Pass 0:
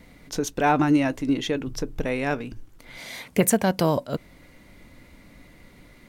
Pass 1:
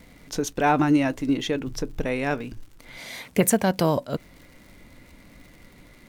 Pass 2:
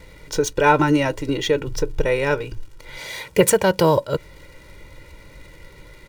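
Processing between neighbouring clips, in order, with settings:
surface crackle 150 per second −42 dBFS
running median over 3 samples; comb filter 2.1 ms, depth 82%; level +4 dB

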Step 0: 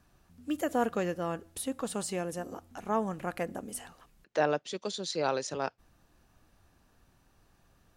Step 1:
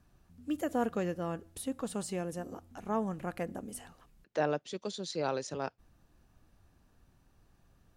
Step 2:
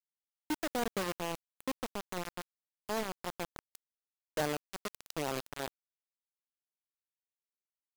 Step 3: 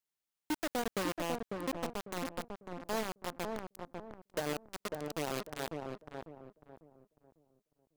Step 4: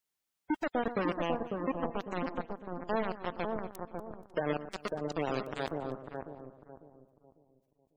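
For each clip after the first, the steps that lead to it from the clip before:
low-shelf EQ 350 Hz +6.5 dB; level −5 dB
bit reduction 5 bits; level −3.5 dB
brickwall limiter −31.5 dBFS, peak gain reduction 10.5 dB; on a send: feedback echo with a low-pass in the loop 548 ms, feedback 35%, low-pass 960 Hz, level −3 dB; on the sum: level +4 dB
gate on every frequency bin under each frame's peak −20 dB strong; delay that swaps between a low-pass and a high-pass 120 ms, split 1,500 Hz, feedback 55%, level −11 dB; level +4 dB

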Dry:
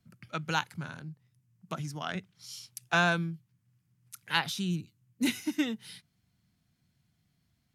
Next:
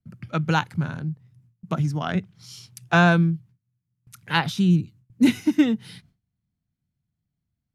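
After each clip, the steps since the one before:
noise gate with hold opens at −60 dBFS
spectral tilt −2.5 dB per octave
level +7.5 dB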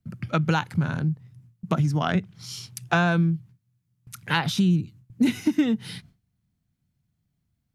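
in parallel at −1 dB: brickwall limiter −12 dBFS, peak gain reduction 8 dB
on the sum: downward compressor 3 to 1, threshold −20 dBFS, peak gain reduction 9 dB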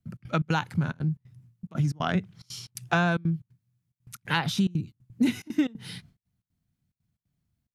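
gate pattern "xx.xx.xxx" 180 BPM −24 dB
level −2.5 dB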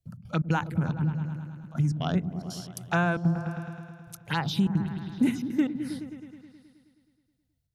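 phaser swept by the level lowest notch 220 Hz, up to 4,800 Hz, full sweep at −20.5 dBFS
on a send: echo whose low-pass opens from repeat to repeat 106 ms, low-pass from 200 Hz, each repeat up 1 octave, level −6 dB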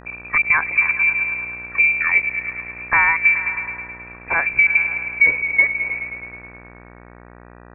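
voice inversion scrambler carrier 2,500 Hz
hum with harmonics 60 Hz, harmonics 32, −52 dBFS −3 dB per octave
level +9 dB

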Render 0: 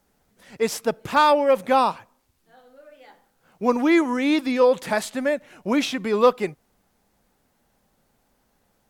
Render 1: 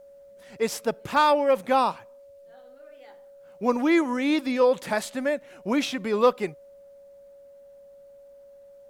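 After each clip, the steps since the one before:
steady tone 560 Hz −44 dBFS
level −3 dB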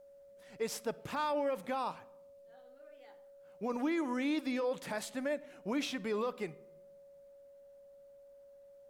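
brickwall limiter −19 dBFS, peak gain reduction 11 dB
rectangular room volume 3,300 cubic metres, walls furnished, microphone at 0.44 metres
level −8 dB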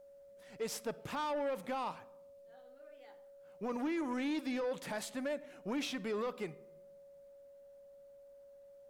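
soft clipping −30.5 dBFS, distortion −16 dB

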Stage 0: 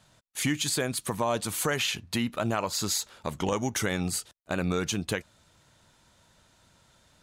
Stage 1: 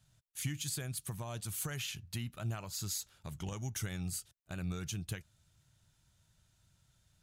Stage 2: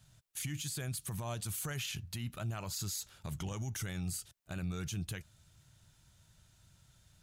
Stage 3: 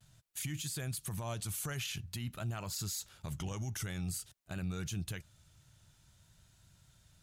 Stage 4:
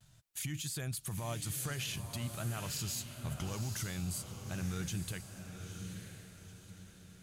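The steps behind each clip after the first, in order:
octave-band graphic EQ 125/250/500/1,000/2,000/4,000/8,000 Hz +4/−11/−12/−11/−7/−6/−4 dB; level −4 dB
brickwall limiter −36 dBFS, peak gain reduction 11 dB; level +6 dB
pitch vibrato 0.49 Hz 32 cents
feedback delay with all-pass diffusion 922 ms, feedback 41%, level −7 dB

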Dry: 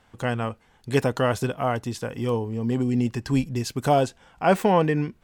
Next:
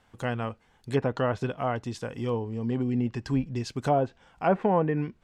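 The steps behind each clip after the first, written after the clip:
treble cut that deepens with the level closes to 1,300 Hz, closed at −15.5 dBFS
level −4 dB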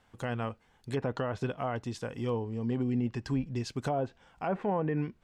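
brickwall limiter −19.5 dBFS, peak gain reduction 7.5 dB
level −2.5 dB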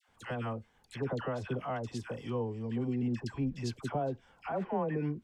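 all-pass dispersion lows, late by 87 ms, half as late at 950 Hz
level −2.5 dB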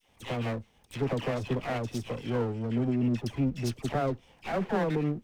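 lower of the sound and its delayed copy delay 0.34 ms
level +5.5 dB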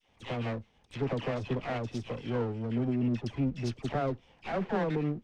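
low-pass filter 5,400 Hz 12 dB per octave
level −2 dB

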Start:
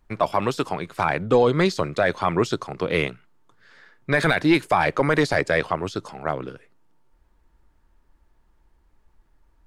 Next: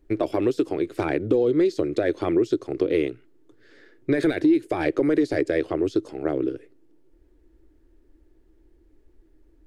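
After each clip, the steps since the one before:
drawn EQ curve 120 Hz 0 dB, 190 Hz −9 dB, 320 Hz +15 dB, 1,000 Hz −14 dB, 1,800 Hz −5 dB
in parallel at +2 dB: brickwall limiter −7 dBFS, peak gain reduction 10.5 dB
on the sum: downward compressor 3 to 1, threshold −15 dBFS, peak gain reduction 13 dB
level −5 dB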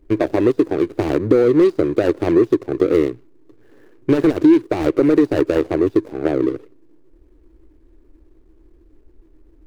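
running median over 41 samples
level +7.5 dB

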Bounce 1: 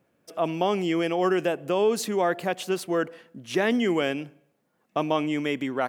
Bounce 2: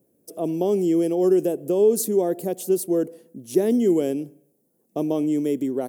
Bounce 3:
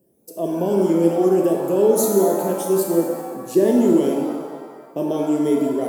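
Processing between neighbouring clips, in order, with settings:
drawn EQ curve 120 Hz 0 dB, 400 Hz +7 dB, 1,300 Hz −18 dB, 2,700 Hz −15 dB, 11,000 Hz +13 dB
rippled gain that drifts along the octave scale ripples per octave 1.3, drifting +2.8 Hz, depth 9 dB; reverb with rising layers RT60 1.5 s, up +7 semitones, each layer −8 dB, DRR 0.5 dB

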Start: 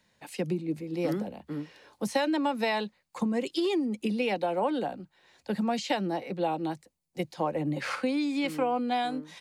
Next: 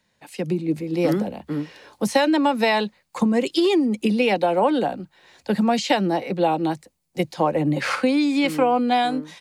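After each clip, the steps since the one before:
automatic gain control gain up to 9 dB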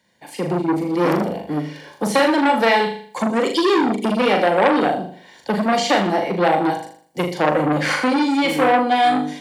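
notch comb filter 1,300 Hz
on a send: flutter between parallel walls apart 6.8 metres, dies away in 0.52 s
on the sum: saturating transformer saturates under 1,500 Hz
level +4.5 dB

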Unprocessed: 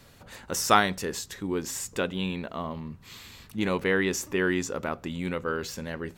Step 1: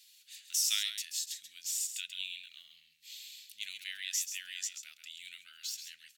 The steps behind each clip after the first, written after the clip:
inverse Chebyshev high-pass filter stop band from 1,100 Hz, stop band 50 dB
on a send: single-tap delay 134 ms −9 dB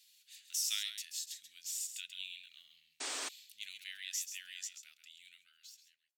fade-out on the ending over 1.69 s
sound drawn into the spectrogram noise, 0:03.00–0:03.29, 250–9,200 Hz −35 dBFS
level −5 dB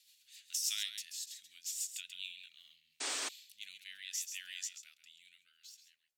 rotating-speaker cabinet horn 7 Hz, later 0.7 Hz, at 0:02.13
level +2.5 dB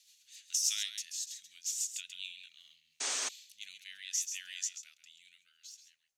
thirty-one-band graphic EQ 315 Hz −8 dB, 6,300 Hz +8 dB, 16,000 Hz −11 dB
level +1 dB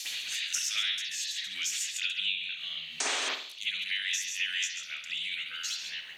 convolution reverb, pre-delay 48 ms, DRR −15 dB
multiband upward and downward compressor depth 100%

